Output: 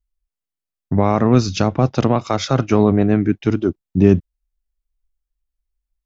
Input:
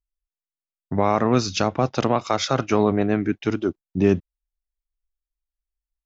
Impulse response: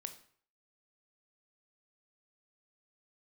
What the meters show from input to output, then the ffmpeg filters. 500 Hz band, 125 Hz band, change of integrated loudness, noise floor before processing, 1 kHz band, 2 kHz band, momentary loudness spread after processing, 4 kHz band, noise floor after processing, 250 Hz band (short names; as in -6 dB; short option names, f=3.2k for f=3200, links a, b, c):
+3.5 dB, +9.0 dB, +5.0 dB, under -85 dBFS, +1.0 dB, +0.5 dB, 5 LU, 0.0 dB, under -85 dBFS, +6.0 dB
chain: -af "lowshelf=f=300:g=10.5"